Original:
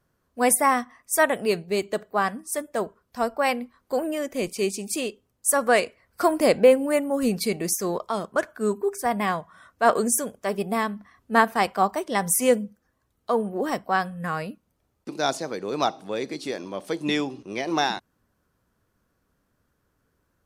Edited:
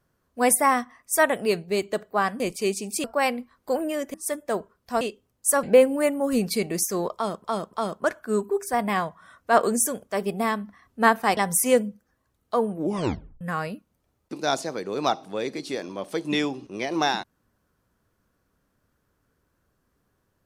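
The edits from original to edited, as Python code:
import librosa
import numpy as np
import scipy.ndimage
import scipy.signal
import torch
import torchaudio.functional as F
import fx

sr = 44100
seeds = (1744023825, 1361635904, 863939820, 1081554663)

y = fx.edit(x, sr, fx.swap(start_s=2.4, length_s=0.87, other_s=4.37, other_length_s=0.64),
    fx.cut(start_s=5.63, length_s=0.9),
    fx.repeat(start_s=8.05, length_s=0.29, count=3),
    fx.cut(start_s=11.69, length_s=0.44),
    fx.tape_stop(start_s=13.47, length_s=0.7), tone=tone)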